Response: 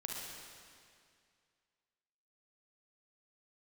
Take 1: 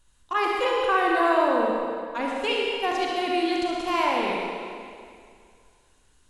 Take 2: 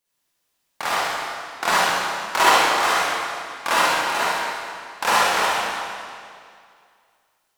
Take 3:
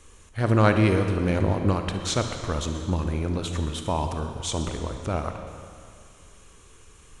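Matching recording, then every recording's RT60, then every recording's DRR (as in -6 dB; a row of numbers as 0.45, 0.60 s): 1; 2.2, 2.2, 2.2 s; -2.5, -10.0, 5.5 dB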